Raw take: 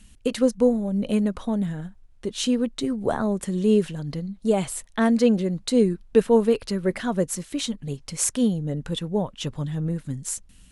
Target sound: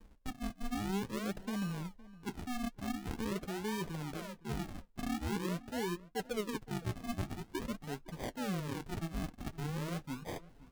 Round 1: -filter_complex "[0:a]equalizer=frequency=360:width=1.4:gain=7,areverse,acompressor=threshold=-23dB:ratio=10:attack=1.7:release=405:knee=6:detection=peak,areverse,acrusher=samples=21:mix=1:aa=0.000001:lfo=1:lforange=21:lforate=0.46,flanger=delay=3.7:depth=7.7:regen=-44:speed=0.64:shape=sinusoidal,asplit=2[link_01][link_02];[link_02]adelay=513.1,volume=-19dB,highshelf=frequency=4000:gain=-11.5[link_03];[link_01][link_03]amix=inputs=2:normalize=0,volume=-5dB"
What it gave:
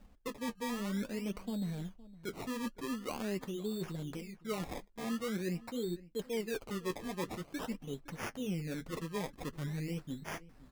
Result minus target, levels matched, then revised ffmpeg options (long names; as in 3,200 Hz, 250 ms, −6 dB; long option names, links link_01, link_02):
sample-and-hold swept by an LFO: distortion −12 dB
-filter_complex "[0:a]equalizer=frequency=360:width=1.4:gain=7,areverse,acompressor=threshold=-23dB:ratio=10:attack=1.7:release=405:knee=6:detection=peak,areverse,acrusher=samples=63:mix=1:aa=0.000001:lfo=1:lforange=63:lforate=0.46,flanger=delay=3.7:depth=7.7:regen=-44:speed=0.64:shape=sinusoidal,asplit=2[link_01][link_02];[link_02]adelay=513.1,volume=-19dB,highshelf=frequency=4000:gain=-11.5[link_03];[link_01][link_03]amix=inputs=2:normalize=0,volume=-5dB"